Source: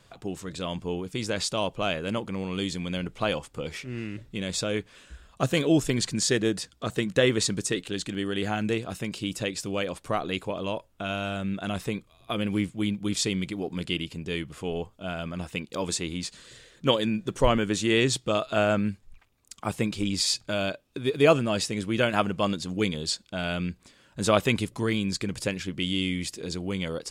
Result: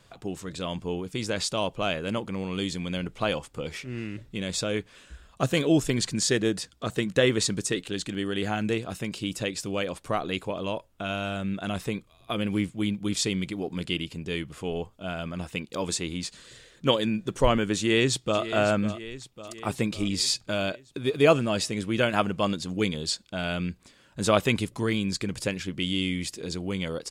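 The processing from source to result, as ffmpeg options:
ffmpeg -i in.wav -filter_complex "[0:a]asplit=2[link_01][link_02];[link_02]afade=type=in:start_time=17.78:duration=0.01,afade=type=out:start_time=18.43:duration=0.01,aecho=0:1:550|1100|1650|2200|2750|3300|3850:0.237137|0.142282|0.0853695|0.0512217|0.030733|0.0184398|0.0110639[link_03];[link_01][link_03]amix=inputs=2:normalize=0" out.wav

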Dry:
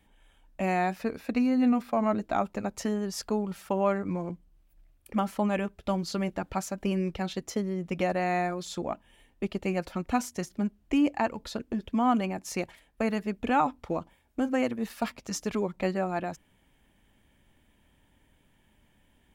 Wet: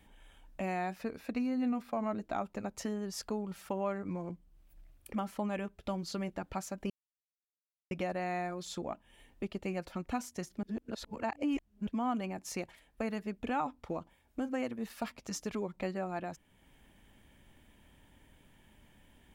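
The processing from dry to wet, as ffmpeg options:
ffmpeg -i in.wav -filter_complex "[0:a]asplit=5[link_01][link_02][link_03][link_04][link_05];[link_01]atrim=end=6.9,asetpts=PTS-STARTPTS,afade=type=out:start_time=6.896:duration=0.004:curve=hsin[link_06];[link_02]atrim=start=6.9:end=7.91,asetpts=PTS-STARTPTS,volume=0[link_07];[link_03]atrim=start=7.91:end=10.632,asetpts=PTS-STARTPTS,afade=type=in:duration=0.004:curve=hsin[link_08];[link_04]atrim=start=10.628:end=11.872,asetpts=PTS-STARTPTS,areverse[link_09];[link_05]atrim=start=11.868[link_10];[link_06][link_07][link_08]concat=n=3:v=0:a=1[link_11];[link_11][link_09]acrossfade=duration=0.004:curve1=hsin:curve2=hsin[link_12];[link_12][link_10]acrossfade=duration=0.004:curve1=hsin:curve2=hsin,acompressor=threshold=-55dB:ratio=1.5,volume=3dB" out.wav

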